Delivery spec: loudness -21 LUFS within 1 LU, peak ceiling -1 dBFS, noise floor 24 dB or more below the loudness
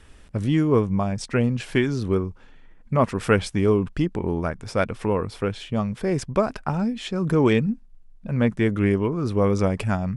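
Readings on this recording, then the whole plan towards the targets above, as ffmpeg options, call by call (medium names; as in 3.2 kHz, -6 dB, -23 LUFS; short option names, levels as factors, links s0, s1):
loudness -23.5 LUFS; peak level -5.0 dBFS; loudness target -21.0 LUFS
-> -af "volume=1.33"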